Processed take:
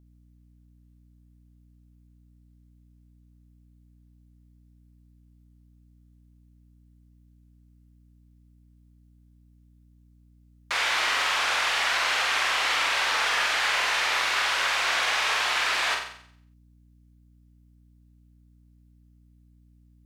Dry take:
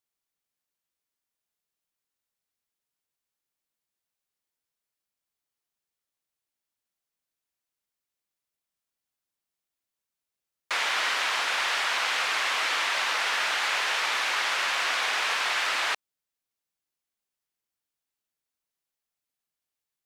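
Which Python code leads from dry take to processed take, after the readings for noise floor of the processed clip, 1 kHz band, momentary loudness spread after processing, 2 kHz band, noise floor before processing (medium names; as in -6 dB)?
-58 dBFS, +2.0 dB, 2 LU, +2.0 dB, under -85 dBFS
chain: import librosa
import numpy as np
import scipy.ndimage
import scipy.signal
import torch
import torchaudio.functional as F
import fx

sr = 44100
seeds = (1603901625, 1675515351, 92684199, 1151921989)

y = fx.room_flutter(x, sr, wall_m=7.8, rt60_s=0.61)
y = fx.add_hum(y, sr, base_hz=60, snr_db=26)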